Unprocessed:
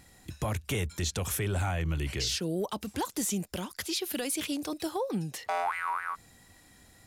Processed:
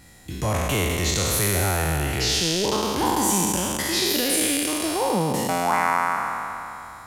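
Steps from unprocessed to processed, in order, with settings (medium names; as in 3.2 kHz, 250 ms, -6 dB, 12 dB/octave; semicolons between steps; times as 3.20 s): spectral sustain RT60 3.00 s; trim +4 dB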